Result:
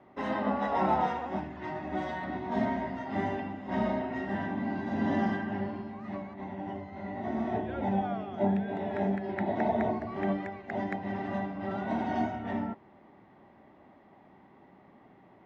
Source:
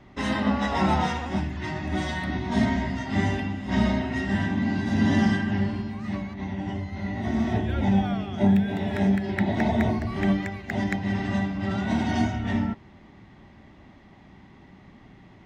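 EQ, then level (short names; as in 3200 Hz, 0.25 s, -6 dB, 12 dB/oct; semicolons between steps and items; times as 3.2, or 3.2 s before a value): band-pass 640 Hz, Q 0.93; 0.0 dB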